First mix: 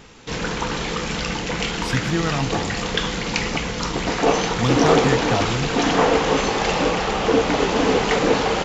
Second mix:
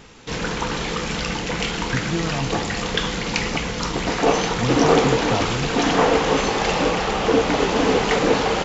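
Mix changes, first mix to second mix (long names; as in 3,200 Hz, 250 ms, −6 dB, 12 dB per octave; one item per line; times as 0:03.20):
speech: add moving average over 18 samples
reverb: off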